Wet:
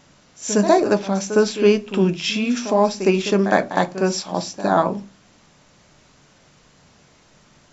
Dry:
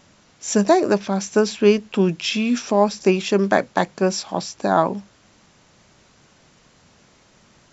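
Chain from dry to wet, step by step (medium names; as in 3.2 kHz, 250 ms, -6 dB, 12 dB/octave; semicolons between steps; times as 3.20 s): reverse echo 61 ms -11.5 dB; simulated room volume 120 m³, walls furnished, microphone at 0.4 m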